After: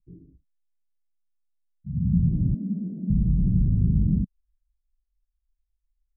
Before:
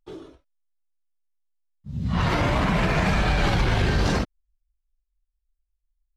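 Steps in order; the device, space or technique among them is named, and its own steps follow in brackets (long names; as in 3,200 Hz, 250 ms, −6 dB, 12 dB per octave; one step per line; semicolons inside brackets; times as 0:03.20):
0:02.54–0:03.10: elliptic band-pass filter 210–640 Hz
the neighbour's flat through the wall (low-pass filter 220 Hz 24 dB per octave; parametric band 180 Hz +6.5 dB 0.85 octaves)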